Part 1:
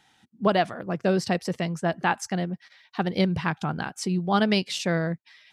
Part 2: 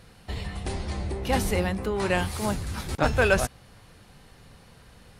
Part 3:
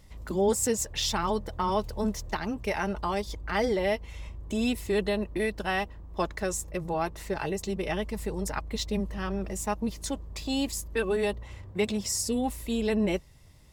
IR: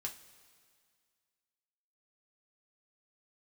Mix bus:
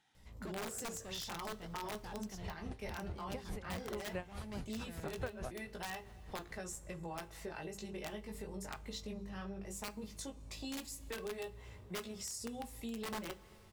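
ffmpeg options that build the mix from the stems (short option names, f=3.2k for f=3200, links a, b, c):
-filter_complex "[0:a]acompressor=threshold=-27dB:ratio=1.5,asoftclip=type=hard:threshold=-28.5dB,volume=-13.5dB[a];[1:a]highshelf=f=2.5k:g=-10,aeval=exprs='val(0)*pow(10,-25*(0.5-0.5*cos(2*PI*4.7*n/s))/20)':c=same,adelay=2050,volume=-0.5dB[b];[2:a]flanger=delay=17:depth=3.1:speed=0.17,bandreject=f=50:t=h:w=6,bandreject=f=100:t=h:w=6,bandreject=f=150:t=h:w=6,bandreject=f=200:t=h:w=6,bandreject=f=250:t=h:w=6,bandreject=f=300:t=h:w=6,bandreject=f=350:t=h:w=6,bandreject=f=400:t=h:w=6,bandreject=f=450:t=h:w=6,bandreject=f=500:t=h:w=6,aeval=exprs='(mod(12.6*val(0)+1,2)-1)/12.6':c=same,adelay=150,volume=-7dB,asplit=2[c][d];[d]volume=-4.5dB[e];[3:a]atrim=start_sample=2205[f];[e][f]afir=irnorm=-1:irlink=0[g];[a][b][c][g]amix=inputs=4:normalize=0,acompressor=threshold=-43dB:ratio=3"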